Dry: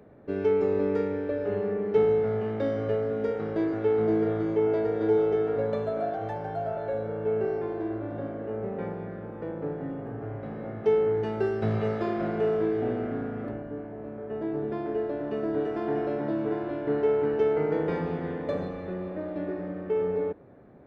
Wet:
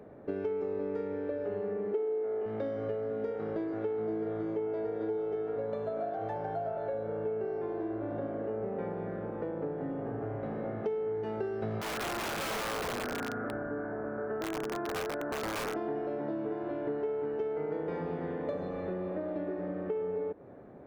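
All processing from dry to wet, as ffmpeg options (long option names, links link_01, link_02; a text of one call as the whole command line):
ffmpeg -i in.wav -filter_complex "[0:a]asettb=1/sr,asplit=3[link_01][link_02][link_03];[link_01]atrim=end=1.934[link_04];[link_02]atrim=start=1.93:end=2.46,asetpts=PTS-STARTPTS,afade=type=in:duration=0.004:curve=qsin,afade=type=out:start_time=0.526:duration=0.004:curve=qsin,lowpass=3300,lowshelf=frequency=230:width_type=q:width=3:gain=-12.5[link_05];[link_03]atrim=start=2.456[link_06];[link_04][link_05]acrossfade=duration=0.004:curve1=hsin:curve2=qsin[link_07];[link_07][link_06]acrossfade=duration=0.004:curve1=qsin:curve2=hsin,asettb=1/sr,asplit=3[link_08][link_09][link_10];[link_08]atrim=end=11.814[link_11];[link_09]atrim=start=11.81:end=15.75,asetpts=PTS-STARTPTS,afade=type=in:duration=0.004:curve=qsin,afade=type=out:start_time=3.936:duration=0.004:curve=qsin,lowpass=frequency=1500:width_type=q:width=5.8,aeval=exprs='(mod(13.3*val(0)+1,2)-1)/13.3':channel_layout=same,acompressor=threshold=-31dB:ratio=2.5:attack=3.2:release=140:knee=1:detection=peak[link_12];[link_10]atrim=start=15.746[link_13];[link_11][link_12]acrossfade=duration=0.004:curve1=hsin:curve2=qsin[link_14];[link_14][link_13]acrossfade=duration=0.004:curve1=qsin:curve2=hsin,equalizer=frequency=600:width=0.42:gain=5.5,acompressor=threshold=-30dB:ratio=6,volume=-2dB" out.wav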